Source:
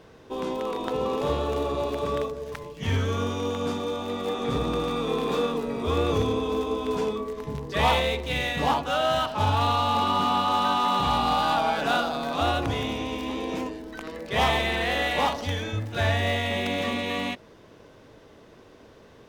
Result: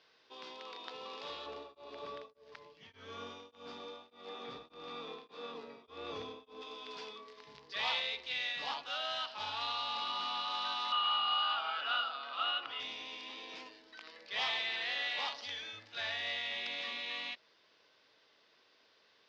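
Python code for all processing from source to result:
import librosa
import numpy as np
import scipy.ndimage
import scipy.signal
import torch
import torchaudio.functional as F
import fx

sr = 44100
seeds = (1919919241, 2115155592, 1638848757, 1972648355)

y = fx.chain(x, sr, fx.tilt_shelf(db=6.5, hz=1300.0),
    fx.tremolo_abs(hz=1.7), at=(1.46, 6.62))
y = fx.chain(y, sr, fx.highpass(hz=420.0, slope=6),
    fx.air_absorb(metres=230.0),
    fx.small_body(hz=(1300.0, 2900.0), ring_ms=25, db=16), at=(10.92, 12.8))
y = scipy.signal.sosfilt(scipy.signal.cheby1(4, 1.0, 4900.0, 'lowpass', fs=sr, output='sos'), y)
y = np.diff(y, prepend=0.0)
y = y * librosa.db_to_amplitude(1.5)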